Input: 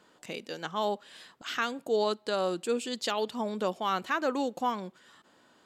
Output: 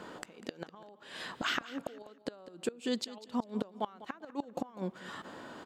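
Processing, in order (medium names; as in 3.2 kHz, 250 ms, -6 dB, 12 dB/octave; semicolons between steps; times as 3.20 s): treble shelf 2.5 kHz -10.5 dB; compression 3:1, threshold -49 dBFS, peak gain reduction 18 dB; inverted gate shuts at -37 dBFS, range -24 dB; feedback delay 198 ms, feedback 30%, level -16 dB; trim +16.5 dB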